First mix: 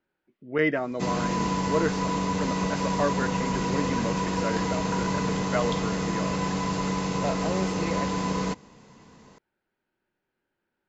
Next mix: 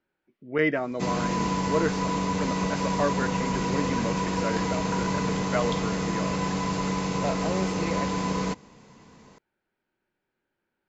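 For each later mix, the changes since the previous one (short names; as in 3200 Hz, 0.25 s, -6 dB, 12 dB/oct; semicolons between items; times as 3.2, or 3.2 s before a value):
master: remove notch 2300 Hz, Q 27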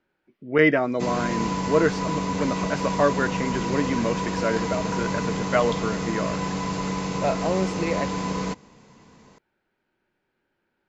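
speech +6.0 dB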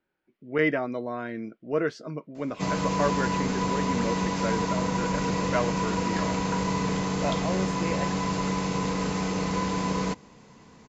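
speech -6.0 dB; background: entry +1.60 s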